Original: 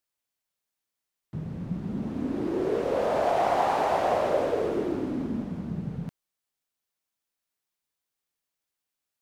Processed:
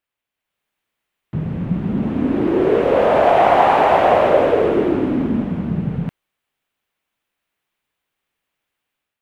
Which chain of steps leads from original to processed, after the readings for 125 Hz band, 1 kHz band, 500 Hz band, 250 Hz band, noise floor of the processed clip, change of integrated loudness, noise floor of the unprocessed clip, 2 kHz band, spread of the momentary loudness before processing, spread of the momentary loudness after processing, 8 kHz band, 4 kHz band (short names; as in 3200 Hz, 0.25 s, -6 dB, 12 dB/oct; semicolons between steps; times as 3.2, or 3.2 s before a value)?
+11.5 dB, +11.5 dB, +11.5 dB, +11.5 dB, -84 dBFS, +11.5 dB, under -85 dBFS, +13.0 dB, 12 LU, 12 LU, n/a, +10.0 dB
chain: resonant high shelf 3800 Hz -9 dB, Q 1.5; AGC gain up to 7 dB; gain +4.5 dB